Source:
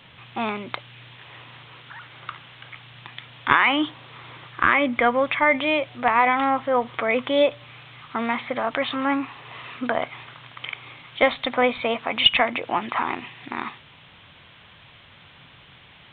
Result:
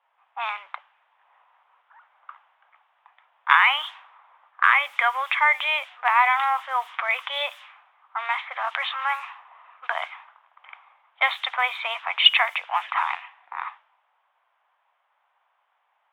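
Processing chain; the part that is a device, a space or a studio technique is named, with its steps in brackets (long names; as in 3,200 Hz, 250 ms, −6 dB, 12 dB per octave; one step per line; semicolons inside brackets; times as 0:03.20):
cassette deck with a dynamic noise filter (white noise bed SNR 33 dB; low-pass that shuts in the quiet parts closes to 410 Hz, open at −18 dBFS)
Butterworth high-pass 810 Hz 36 dB per octave
level +1.5 dB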